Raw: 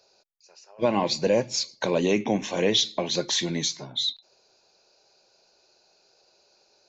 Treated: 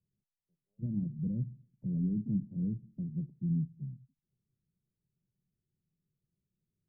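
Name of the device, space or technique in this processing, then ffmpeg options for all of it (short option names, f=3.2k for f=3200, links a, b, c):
the neighbour's flat through the wall: -af "lowpass=f=180:w=0.5412,lowpass=f=180:w=1.3066,equalizer=f=150:t=o:w=0.88:g=7,volume=-1.5dB"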